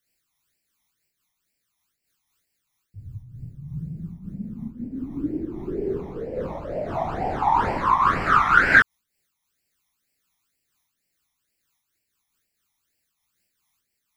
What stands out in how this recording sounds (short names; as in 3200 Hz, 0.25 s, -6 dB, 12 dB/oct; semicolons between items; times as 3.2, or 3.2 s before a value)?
phasing stages 12, 2.1 Hz, lowest notch 470–1200 Hz; noise-modulated level